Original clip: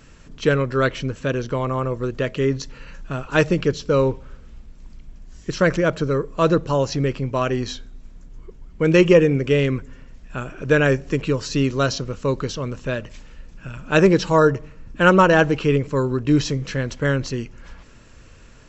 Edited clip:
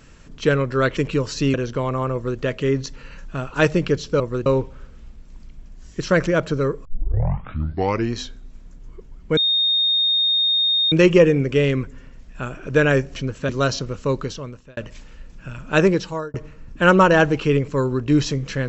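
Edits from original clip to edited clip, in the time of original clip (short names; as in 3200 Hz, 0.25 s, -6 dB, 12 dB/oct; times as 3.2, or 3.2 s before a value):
0.97–1.3 swap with 11.11–11.68
1.89–2.15 copy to 3.96
6.35 tape start 1.32 s
8.87 add tone 3690 Hz -15.5 dBFS 1.55 s
12.33–12.96 fade out
13.93–14.53 fade out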